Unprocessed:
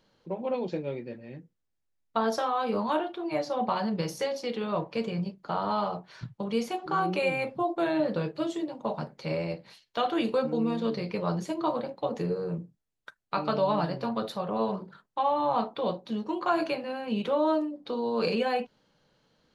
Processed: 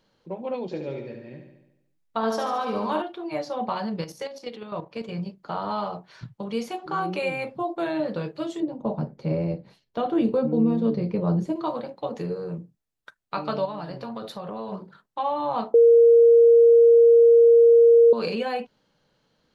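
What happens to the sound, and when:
0.64–3.02 feedback echo 72 ms, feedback 59%, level -6 dB
4.04–5.09 level quantiser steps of 10 dB
8.6–11.56 tilt shelf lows +9.5 dB, about 750 Hz
13.65–14.72 compressor, threshold -30 dBFS
15.74–18.13 bleep 466 Hz -10.5 dBFS

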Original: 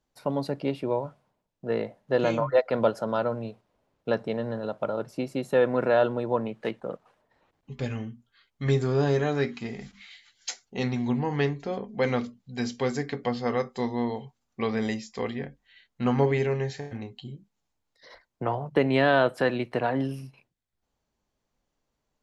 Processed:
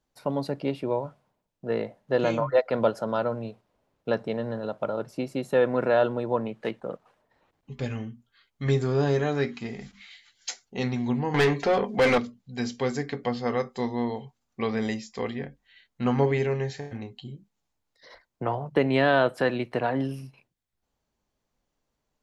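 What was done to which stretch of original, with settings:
11.34–12.18 overdrive pedal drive 24 dB, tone 3700 Hz, clips at -12.5 dBFS

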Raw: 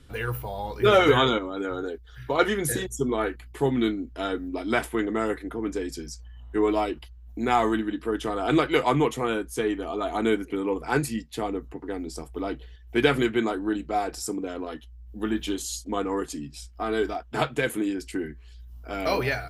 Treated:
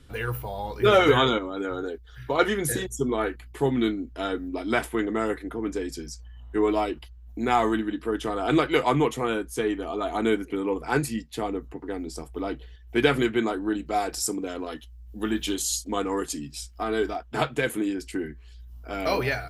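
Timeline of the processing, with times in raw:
13.86–16.84 high shelf 2900 Hz +7 dB

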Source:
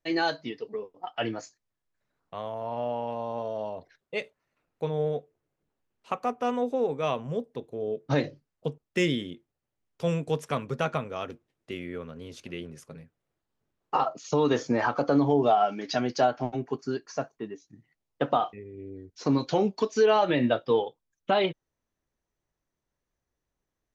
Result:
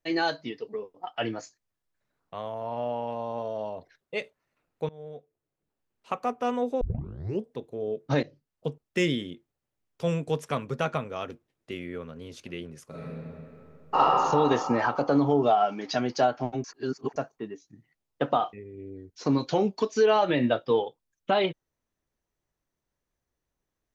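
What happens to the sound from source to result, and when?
4.89–6.16 fade in, from -22 dB
6.81 tape start 0.66 s
8.23–8.68 fade in, from -13.5 dB
12.85–14 reverb throw, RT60 2.9 s, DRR -9 dB
16.64–17.16 reverse

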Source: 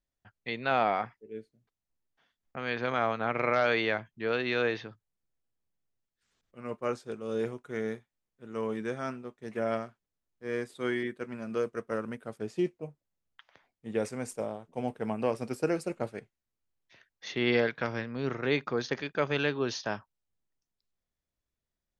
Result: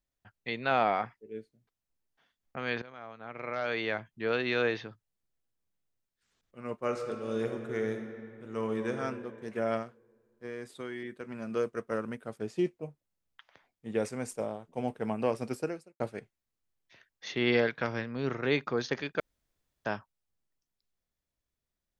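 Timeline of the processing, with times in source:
2.82–4.15 fade in quadratic, from -19 dB
6.75–8.92 reverb throw, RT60 2.4 s, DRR 4.5 dB
9.82–11.4 compressor, threshold -35 dBFS
15.55–16 fade out quadratic
19.2–19.85 room tone

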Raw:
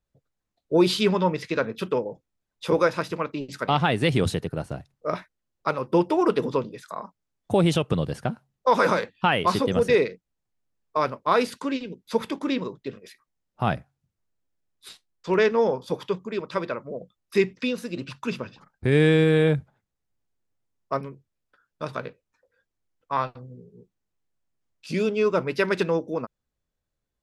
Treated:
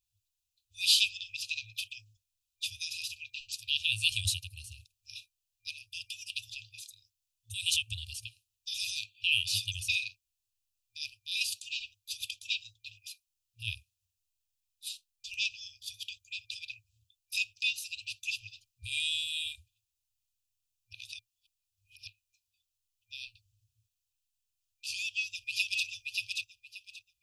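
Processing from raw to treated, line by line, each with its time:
20.93–22.07 reverse
24.94–25.85 echo throw 0.58 s, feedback 20%, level -3 dB
whole clip: tilt +2 dB/oct; FFT band-reject 110–2400 Hz

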